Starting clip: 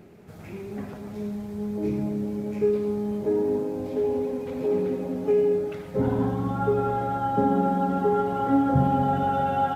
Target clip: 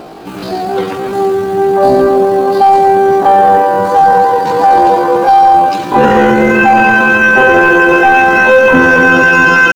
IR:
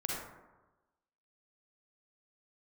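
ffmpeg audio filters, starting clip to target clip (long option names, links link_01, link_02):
-af "apsyclip=21.5dB,asetrate=83250,aresample=44100,atempo=0.529732,volume=-1.5dB"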